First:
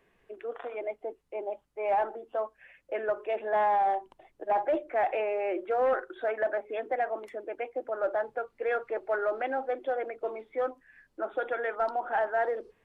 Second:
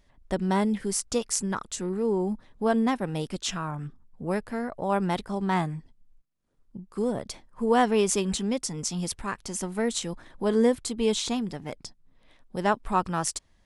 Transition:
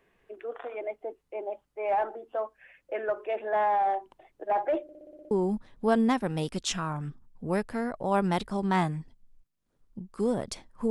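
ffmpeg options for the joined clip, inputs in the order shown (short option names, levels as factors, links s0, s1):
-filter_complex "[0:a]apad=whole_dur=10.9,atrim=end=10.9,asplit=8[s0][s1][s2][s3][s4][s5][s6][s7];[s0]atrim=end=4.892[s8];[s1]atrim=start=4.828:end=4.892[s9];[s2]atrim=start=4.828:end=4.892[s10];[s3]atrim=start=4.828:end=4.892[s11];[s4]atrim=start=4.828:end=4.892[s12];[s5]atrim=start=4.828:end=4.892[s13];[s6]atrim=start=4.828:end=4.892[s14];[s7]atrim=start=4.828:end=4.892[s15];[1:a]atrim=start=2.088:end=7.68[s16];[s8][s9]acrossfade=d=0.004:c1=hsin:c2=hsin[s17];[s17][s10]acrossfade=d=0.004:c1=hsin:c2=hsin[s18];[s18][s11]acrossfade=d=0.004:c1=hsin:c2=hsin[s19];[s19][s12]acrossfade=d=0.004:c1=hsin:c2=hsin[s20];[s20][s13]acrossfade=d=0.004:c1=hsin:c2=hsin[s21];[s21][s14]acrossfade=d=0.004:c1=hsin:c2=hsin[s22];[s22][s15]acrossfade=d=0.004:c1=hsin:c2=hsin[s23];[s23][s16]acrossfade=d=0.004:c1=hsin:c2=hsin"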